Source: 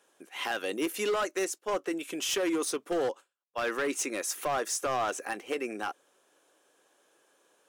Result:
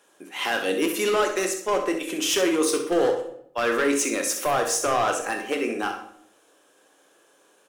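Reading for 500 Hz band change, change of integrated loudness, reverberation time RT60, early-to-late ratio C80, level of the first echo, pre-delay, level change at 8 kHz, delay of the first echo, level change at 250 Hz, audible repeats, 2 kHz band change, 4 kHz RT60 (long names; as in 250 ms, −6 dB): +8.0 dB, +7.5 dB, 0.65 s, 10.5 dB, −10.0 dB, 16 ms, +7.5 dB, 64 ms, +8.0 dB, 1, +7.5 dB, 0.50 s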